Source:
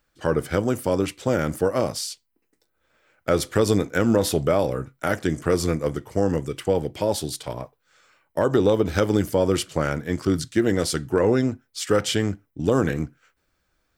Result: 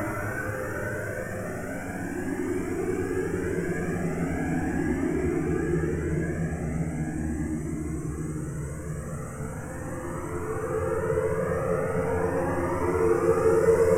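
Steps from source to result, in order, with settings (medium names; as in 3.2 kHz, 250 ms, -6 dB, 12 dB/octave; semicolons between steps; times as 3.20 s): single-diode clipper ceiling -19.5 dBFS; Paulstretch 38×, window 0.25 s, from 5.16 s; Butterworth band-stop 3.9 kHz, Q 0.9; Shepard-style flanger rising 0.39 Hz; trim +4.5 dB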